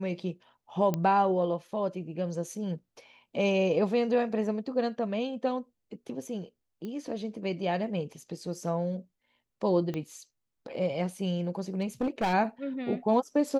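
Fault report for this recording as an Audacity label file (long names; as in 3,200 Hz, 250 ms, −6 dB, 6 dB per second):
0.940000	0.940000	click −16 dBFS
6.850000	6.850000	click −27 dBFS
9.940000	9.940000	click −22 dBFS
11.580000	12.340000	clipping −24 dBFS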